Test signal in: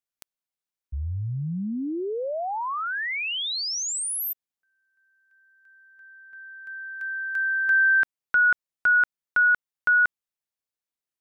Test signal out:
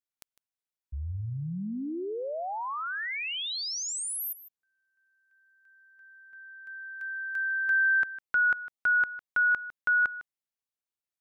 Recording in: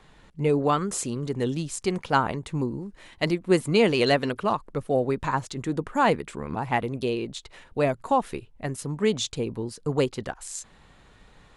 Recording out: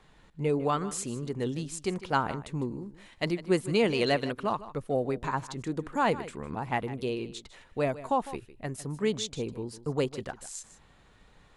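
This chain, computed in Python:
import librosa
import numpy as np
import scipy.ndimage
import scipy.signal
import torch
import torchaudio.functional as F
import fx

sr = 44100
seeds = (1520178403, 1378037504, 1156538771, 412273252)

y = x + 10.0 ** (-15.5 / 20.0) * np.pad(x, (int(154 * sr / 1000.0), 0))[:len(x)]
y = F.gain(torch.from_numpy(y), -5.0).numpy()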